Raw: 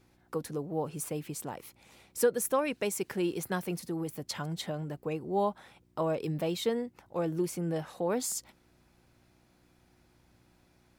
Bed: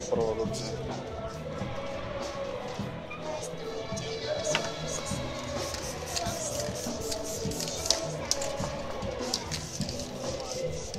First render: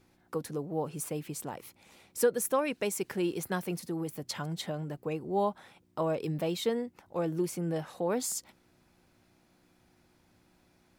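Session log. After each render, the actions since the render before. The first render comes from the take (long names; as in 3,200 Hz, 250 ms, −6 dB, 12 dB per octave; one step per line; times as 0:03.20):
hum removal 60 Hz, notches 2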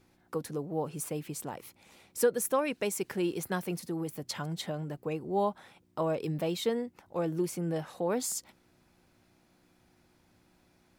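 no processing that can be heard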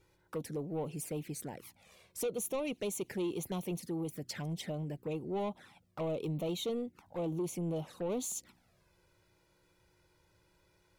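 soft clipping −29.5 dBFS, distortion −10 dB
flanger swept by the level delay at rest 2.2 ms, full sweep at −34 dBFS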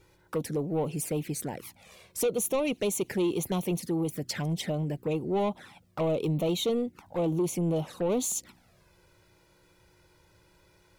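level +8 dB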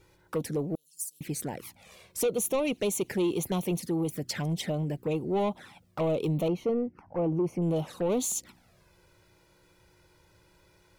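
0:00.75–0:01.21: inverse Chebyshev high-pass filter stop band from 2,200 Hz, stop band 50 dB
0:06.48–0:07.62: moving average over 12 samples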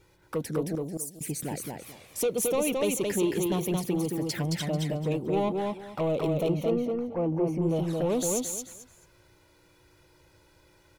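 repeating echo 220 ms, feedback 22%, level −3 dB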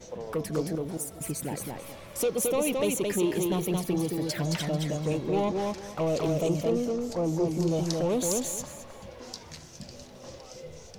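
mix in bed −10.5 dB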